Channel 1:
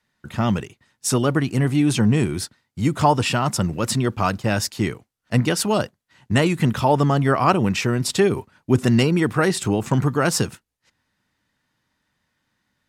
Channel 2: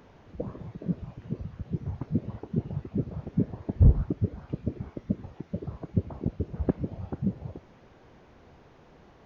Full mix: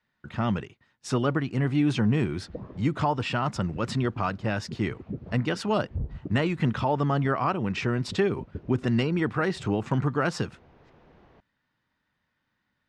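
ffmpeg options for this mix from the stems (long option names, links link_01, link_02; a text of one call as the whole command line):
ffmpeg -i stem1.wav -i stem2.wav -filter_complex "[0:a]equalizer=frequency=1400:width=1.5:gain=2,volume=-5dB,asplit=2[link_01][link_02];[1:a]acompressor=threshold=-30dB:ratio=3,adelay=2150,volume=-1.5dB[link_03];[link_02]apad=whole_len=502824[link_04];[link_03][link_04]sidechaincompress=threshold=-34dB:ratio=8:attack=16:release=111[link_05];[link_01][link_05]amix=inputs=2:normalize=0,lowpass=3900,alimiter=limit=-14dB:level=0:latency=1:release=399" out.wav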